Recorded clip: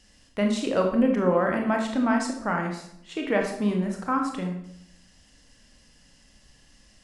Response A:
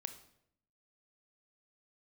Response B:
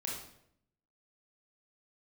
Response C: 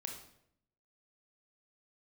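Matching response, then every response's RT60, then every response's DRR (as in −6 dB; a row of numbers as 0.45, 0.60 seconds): C; 0.70, 0.70, 0.70 seconds; 8.5, −3.5, 2.0 decibels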